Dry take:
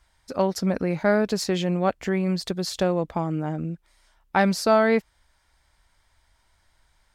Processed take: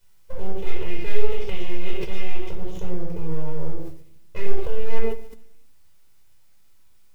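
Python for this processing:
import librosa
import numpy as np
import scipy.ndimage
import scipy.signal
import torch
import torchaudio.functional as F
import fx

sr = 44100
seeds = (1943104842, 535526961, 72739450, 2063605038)

p1 = fx.envelope_flatten(x, sr, power=0.3, at=(0.58, 2.49), fade=0.02)
p2 = fx.dynamic_eq(p1, sr, hz=400.0, q=0.86, threshold_db=-34.0, ratio=4.0, max_db=-7)
p3 = fx.formant_cascade(p2, sr, vowel='i')
p4 = 10.0 ** (-37.0 / 20.0) * np.tanh(p3 / 10.0 ** (-37.0 / 20.0))
p5 = p3 + (p4 * 10.0 ** (-9.0 / 20.0))
p6 = fx.quant_dither(p5, sr, seeds[0], bits=12, dither='triangular')
p7 = fx.echo_feedback(p6, sr, ms=143, feedback_pct=53, wet_db=-22.5)
p8 = np.abs(p7)
p9 = fx.quant_float(p8, sr, bits=4)
p10 = fx.room_shoebox(p9, sr, seeds[1], volume_m3=760.0, walls='furnished', distance_m=4.9)
y = fx.sustainer(p10, sr, db_per_s=92.0)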